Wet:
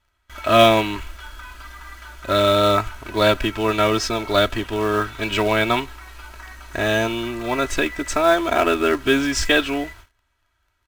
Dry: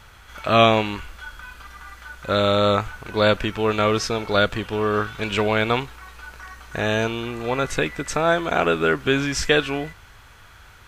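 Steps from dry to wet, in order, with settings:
noise gate with hold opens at −34 dBFS
comb filter 3.1 ms, depth 77%
in parallel at −6.5 dB: log-companded quantiser 4 bits
on the sum: level −3.5 dB

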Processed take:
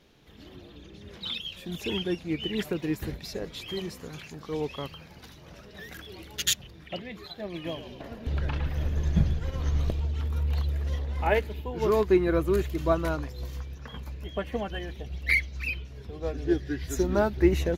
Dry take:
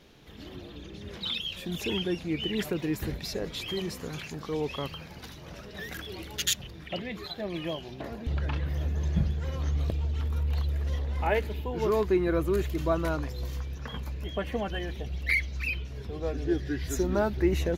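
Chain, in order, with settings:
0:07.54–0:10.00: echo with shifted repeats 110 ms, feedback 58%, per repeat −46 Hz, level −8 dB
expander for the loud parts 1.5 to 1, over −37 dBFS
level +4.5 dB

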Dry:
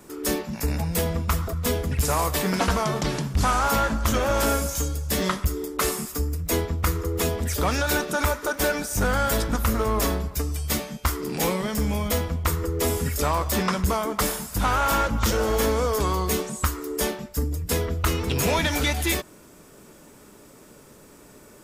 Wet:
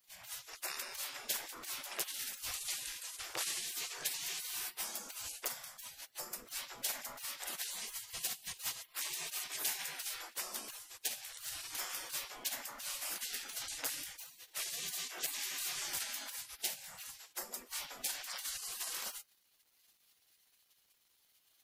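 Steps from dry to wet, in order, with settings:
gate on every frequency bin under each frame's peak −30 dB weak
surface crackle 440 per second −64 dBFS

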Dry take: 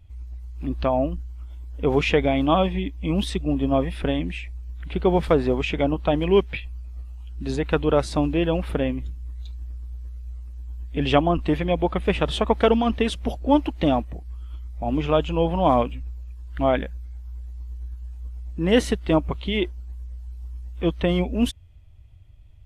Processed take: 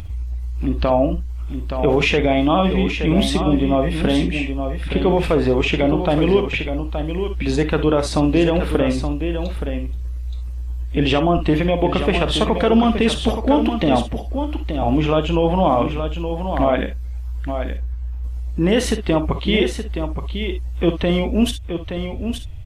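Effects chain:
0:17.77–0:18.24: low-pass filter 2,600 Hz
in parallel at +2 dB: upward compression, threshold −25 dBFS
on the sum: brickwall limiter −8 dBFS, peak gain reduction 10 dB
single-tap delay 872 ms −8 dB
reverb whose tail is shaped and stops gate 80 ms rising, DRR 8.5 dB

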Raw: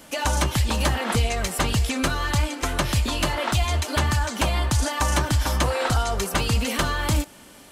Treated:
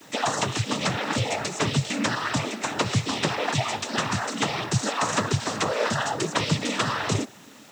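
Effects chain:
cochlear-implant simulation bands 12
bit-depth reduction 10 bits, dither triangular

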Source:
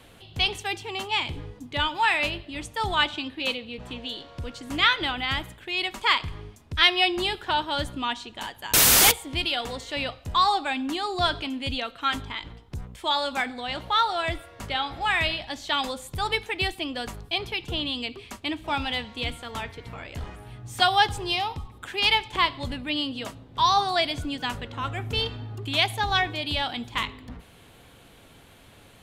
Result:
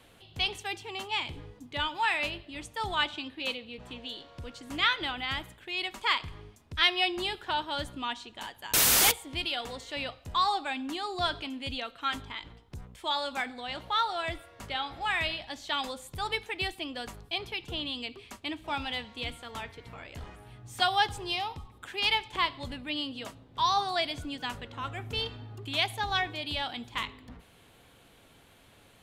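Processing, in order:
low-shelf EQ 230 Hz −3 dB
level −5.5 dB

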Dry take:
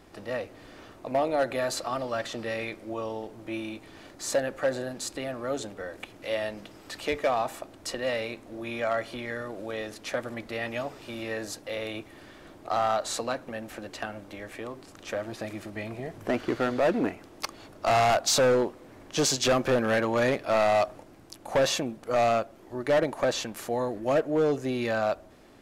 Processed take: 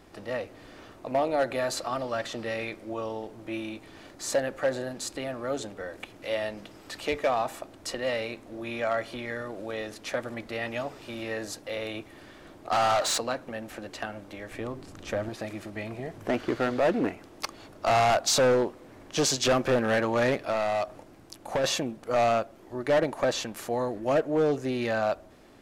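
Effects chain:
0:12.72–0:13.18: mid-hump overdrive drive 20 dB, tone 7,300 Hz, clips at −18.5 dBFS
0:14.51–0:15.29: low-shelf EQ 230 Hz +10.5 dB
0:20.44–0:21.64: downward compressor, threshold −25 dBFS, peak gain reduction 5 dB
highs frequency-modulated by the lows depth 0.1 ms

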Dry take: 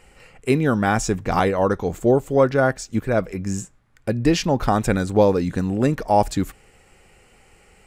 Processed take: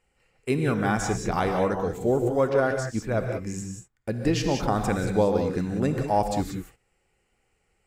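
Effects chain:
reverb whose tail is shaped and stops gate 210 ms rising, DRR 4 dB
noise gate −40 dBFS, range −13 dB
level −6.5 dB

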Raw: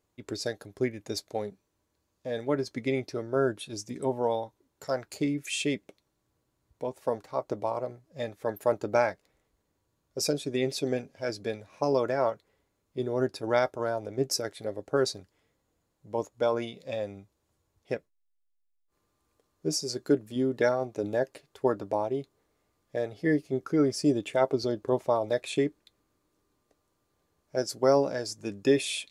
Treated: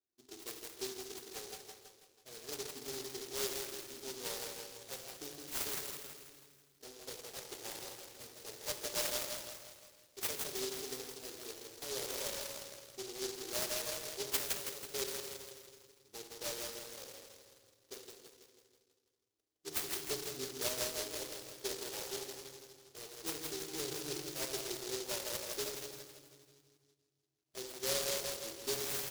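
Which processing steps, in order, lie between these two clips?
gain on one half-wave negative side −12 dB
first-order pre-emphasis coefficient 0.9
low-pass that shuts in the quiet parts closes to 850 Hz, open at −28.5 dBFS
parametric band 1,900 Hz +9.5 dB 1.1 octaves
flanger swept by the level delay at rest 2.8 ms, full sweep at −23 dBFS
high-pass filter 110 Hz
repeating echo 163 ms, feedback 53%, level −3.5 dB
rectangular room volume 1,100 cubic metres, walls mixed, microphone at 1.2 metres
short delay modulated by noise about 4,900 Hz, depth 0.29 ms
level +7 dB

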